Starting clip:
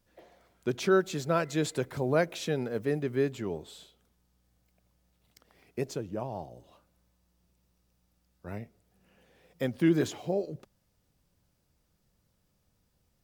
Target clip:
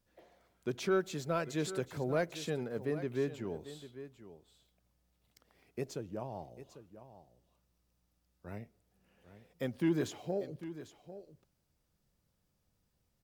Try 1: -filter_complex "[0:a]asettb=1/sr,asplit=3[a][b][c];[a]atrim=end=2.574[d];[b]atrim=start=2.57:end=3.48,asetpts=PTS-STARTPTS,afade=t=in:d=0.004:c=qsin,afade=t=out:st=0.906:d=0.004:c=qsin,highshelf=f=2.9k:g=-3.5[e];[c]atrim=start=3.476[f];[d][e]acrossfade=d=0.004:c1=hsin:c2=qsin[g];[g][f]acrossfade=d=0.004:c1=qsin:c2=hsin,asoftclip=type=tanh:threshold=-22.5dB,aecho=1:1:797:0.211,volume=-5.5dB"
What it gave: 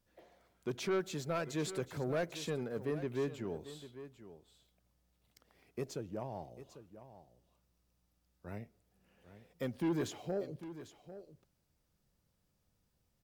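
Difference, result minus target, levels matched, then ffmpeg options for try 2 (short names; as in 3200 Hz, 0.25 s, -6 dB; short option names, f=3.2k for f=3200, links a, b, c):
soft clip: distortion +12 dB
-filter_complex "[0:a]asettb=1/sr,asplit=3[a][b][c];[a]atrim=end=2.574[d];[b]atrim=start=2.57:end=3.48,asetpts=PTS-STARTPTS,afade=t=in:d=0.004:c=qsin,afade=t=out:st=0.906:d=0.004:c=qsin,highshelf=f=2.9k:g=-3.5[e];[c]atrim=start=3.476[f];[d][e]acrossfade=d=0.004:c1=hsin:c2=qsin[g];[g][f]acrossfade=d=0.004:c1=qsin:c2=hsin,asoftclip=type=tanh:threshold=-14dB,aecho=1:1:797:0.211,volume=-5.5dB"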